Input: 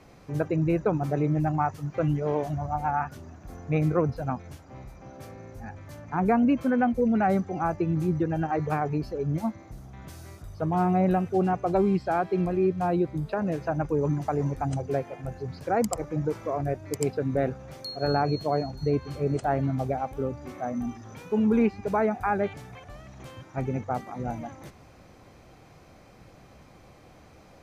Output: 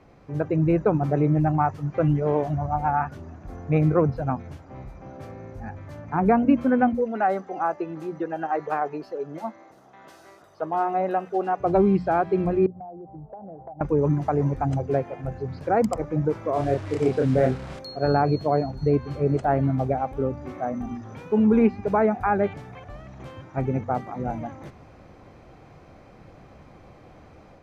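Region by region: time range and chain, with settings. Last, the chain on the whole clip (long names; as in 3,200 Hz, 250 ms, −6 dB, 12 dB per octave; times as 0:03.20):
0:06.95–0:11.60: high-pass filter 470 Hz + notch filter 2,300 Hz
0:12.66–0:13.81: transistor ladder low-pass 820 Hz, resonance 80% + downward compressor 10 to 1, threshold −40 dBFS
0:16.53–0:17.79: linear delta modulator 64 kbit/s, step −37 dBFS + low-pass filter 10,000 Hz + double-tracking delay 31 ms −3 dB
whole clip: low-pass filter 1,900 Hz 6 dB per octave; mains-hum notches 60/120/180/240 Hz; automatic gain control gain up to 4.5 dB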